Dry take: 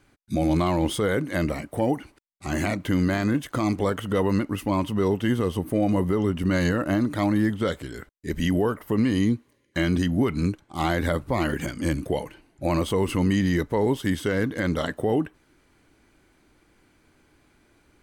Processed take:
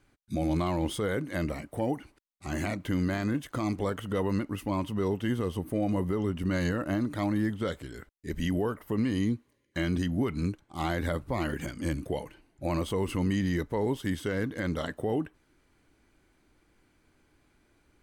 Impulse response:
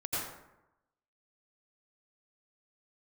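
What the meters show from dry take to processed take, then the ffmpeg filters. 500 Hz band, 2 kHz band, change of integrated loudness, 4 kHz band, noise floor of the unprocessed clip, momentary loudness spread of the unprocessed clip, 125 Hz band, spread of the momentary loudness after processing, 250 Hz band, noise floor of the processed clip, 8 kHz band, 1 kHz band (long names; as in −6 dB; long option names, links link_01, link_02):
−6.5 dB, −6.5 dB, −6.0 dB, −6.5 dB, −64 dBFS, 6 LU, −5.5 dB, 6 LU, −6.0 dB, −69 dBFS, −6.5 dB, −6.5 dB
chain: -af "lowshelf=frequency=62:gain=5,volume=-6.5dB"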